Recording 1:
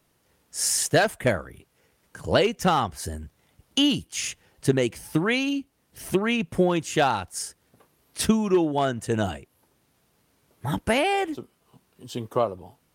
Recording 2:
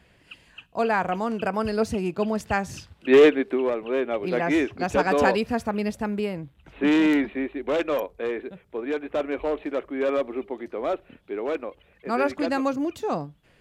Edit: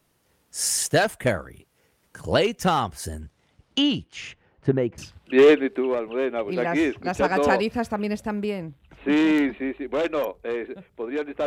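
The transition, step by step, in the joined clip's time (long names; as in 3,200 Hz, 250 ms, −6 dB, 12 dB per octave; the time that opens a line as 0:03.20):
recording 1
0:03.20–0:04.98: low-pass filter 9,100 Hz → 1,100 Hz
0:04.98: continue with recording 2 from 0:02.73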